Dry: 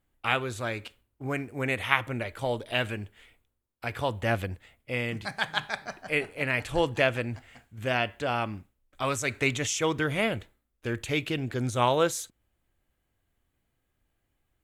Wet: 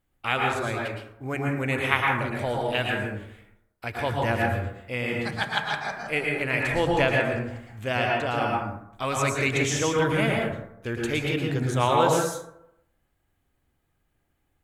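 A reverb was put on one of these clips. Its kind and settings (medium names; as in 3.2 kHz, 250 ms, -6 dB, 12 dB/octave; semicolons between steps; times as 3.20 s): plate-style reverb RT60 0.78 s, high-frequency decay 0.4×, pre-delay 100 ms, DRR -1.5 dB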